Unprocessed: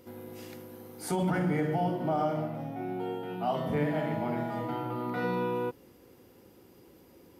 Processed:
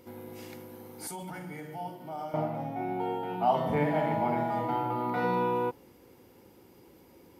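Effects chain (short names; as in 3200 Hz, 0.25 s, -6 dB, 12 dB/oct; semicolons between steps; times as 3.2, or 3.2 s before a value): 1.07–2.34 pre-emphasis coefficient 0.8; small resonant body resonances 890/2200 Hz, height 7 dB, ringing for 30 ms; dynamic EQ 800 Hz, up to +5 dB, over -44 dBFS, Q 1.4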